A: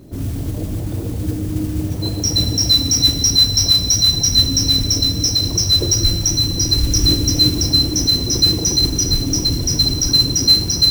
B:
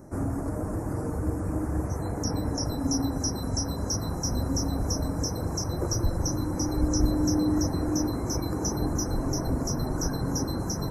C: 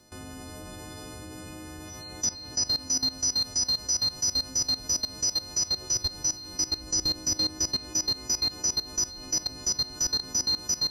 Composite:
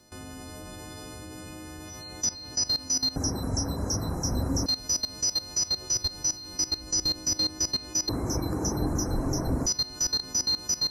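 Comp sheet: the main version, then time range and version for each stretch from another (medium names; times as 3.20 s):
C
3.16–4.66 s: from B
8.09–9.66 s: from B
not used: A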